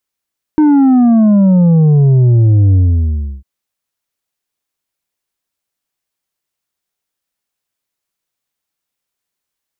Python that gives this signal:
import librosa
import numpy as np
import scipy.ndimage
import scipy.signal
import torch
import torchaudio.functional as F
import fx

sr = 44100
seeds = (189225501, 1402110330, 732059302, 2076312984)

y = fx.sub_drop(sr, level_db=-6.0, start_hz=310.0, length_s=2.85, drive_db=5.5, fade_s=0.68, end_hz=65.0)